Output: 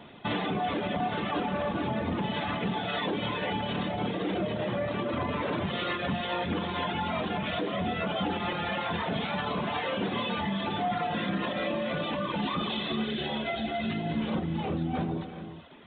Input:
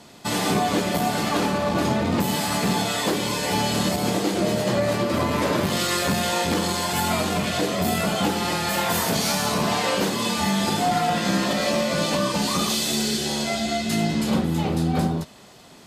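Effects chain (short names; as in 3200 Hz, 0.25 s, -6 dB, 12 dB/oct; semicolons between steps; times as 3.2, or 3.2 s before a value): downsampling 8000 Hz; limiter -20.5 dBFS, peak gain reduction 8.5 dB; reverb removal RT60 1.2 s; non-linear reverb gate 0.44 s rising, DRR 8 dB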